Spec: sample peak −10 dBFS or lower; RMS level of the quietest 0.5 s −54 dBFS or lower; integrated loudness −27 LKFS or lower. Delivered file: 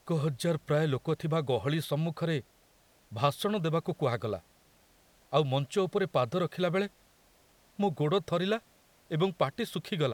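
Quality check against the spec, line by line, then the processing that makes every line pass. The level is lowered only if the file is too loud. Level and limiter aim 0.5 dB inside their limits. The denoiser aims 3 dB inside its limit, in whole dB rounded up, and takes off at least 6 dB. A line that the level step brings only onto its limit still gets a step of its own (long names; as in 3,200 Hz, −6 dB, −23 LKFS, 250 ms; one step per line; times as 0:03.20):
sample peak −11.5 dBFS: in spec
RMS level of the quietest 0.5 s −64 dBFS: in spec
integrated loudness −31.0 LKFS: in spec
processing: no processing needed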